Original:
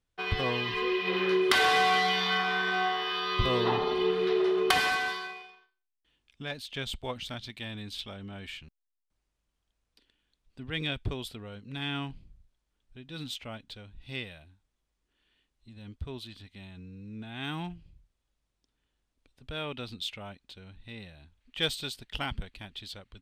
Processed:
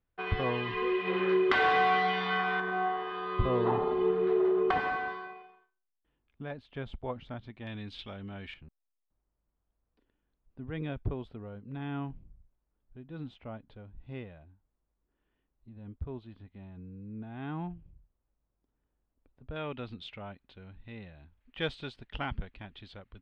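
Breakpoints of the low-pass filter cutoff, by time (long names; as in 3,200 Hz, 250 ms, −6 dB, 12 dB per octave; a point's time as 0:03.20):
2,000 Hz
from 0:02.60 1,200 Hz
from 0:07.67 2,600 Hz
from 0:08.54 1,100 Hz
from 0:19.56 2,000 Hz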